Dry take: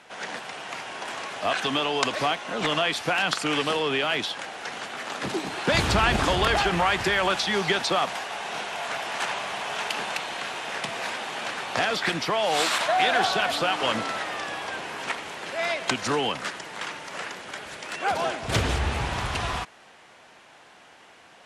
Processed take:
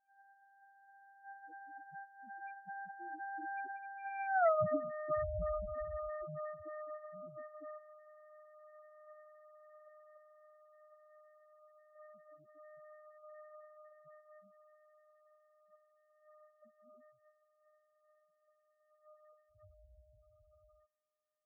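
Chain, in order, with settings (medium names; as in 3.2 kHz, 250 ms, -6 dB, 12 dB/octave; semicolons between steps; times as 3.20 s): sorted samples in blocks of 64 samples; Doppler pass-by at 4.44 s, 44 m/s, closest 3.1 m; loudest bins only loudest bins 4; trim +10 dB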